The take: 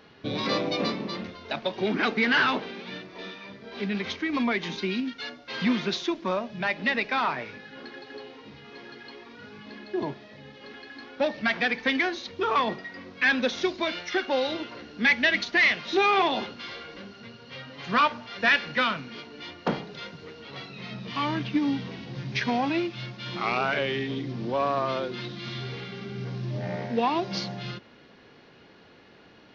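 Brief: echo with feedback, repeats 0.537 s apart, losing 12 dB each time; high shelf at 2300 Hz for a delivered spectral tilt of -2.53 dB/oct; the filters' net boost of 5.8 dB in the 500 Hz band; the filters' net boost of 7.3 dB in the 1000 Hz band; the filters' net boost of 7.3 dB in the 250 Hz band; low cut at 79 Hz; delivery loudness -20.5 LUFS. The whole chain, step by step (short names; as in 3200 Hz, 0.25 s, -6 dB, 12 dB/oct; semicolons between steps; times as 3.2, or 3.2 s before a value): HPF 79 Hz; bell 250 Hz +7.5 dB; bell 500 Hz +3 dB; bell 1000 Hz +7 dB; high shelf 2300 Hz +4.5 dB; feedback echo 0.537 s, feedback 25%, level -12 dB; gain +1 dB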